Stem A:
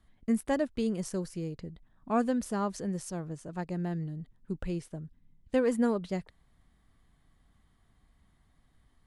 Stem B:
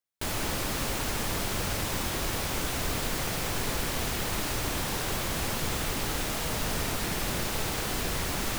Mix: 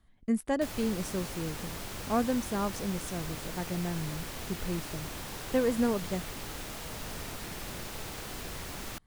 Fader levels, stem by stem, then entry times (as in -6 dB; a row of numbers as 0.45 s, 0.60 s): -0.5 dB, -9.5 dB; 0.00 s, 0.40 s